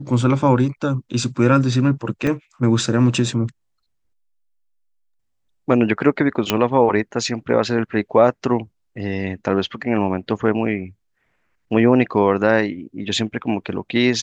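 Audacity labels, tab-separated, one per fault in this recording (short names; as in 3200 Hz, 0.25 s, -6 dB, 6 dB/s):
2.270000	2.270000	gap 2.9 ms
6.500000	6.500000	pop -2 dBFS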